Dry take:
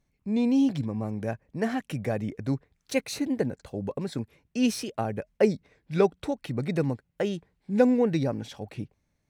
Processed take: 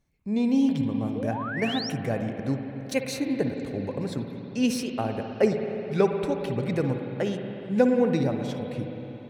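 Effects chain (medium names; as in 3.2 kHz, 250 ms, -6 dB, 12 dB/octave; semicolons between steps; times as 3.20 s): spring tank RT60 3.7 s, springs 53/59 ms, chirp 40 ms, DRR 4 dB; painted sound rise, 1.15–1.90 s, 420–5900 Hz -34 dBFS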